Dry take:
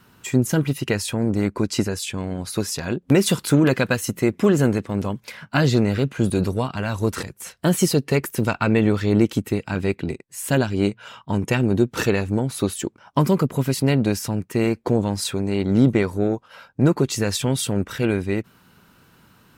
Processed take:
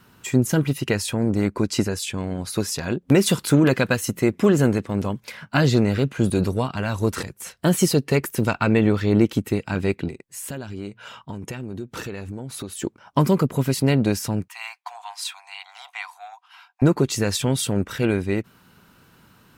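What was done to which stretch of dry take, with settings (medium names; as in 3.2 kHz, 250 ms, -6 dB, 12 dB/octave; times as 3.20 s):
8.78–9.41 s: peaking EQ 8.1 kHz -4 dB 1.2 oct
10.08–12.82 s: compression 4:1, threshold -30 dBFS
14.48–16.82 s: rippled Chebyshev high-pass 710 Hz, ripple 6 dB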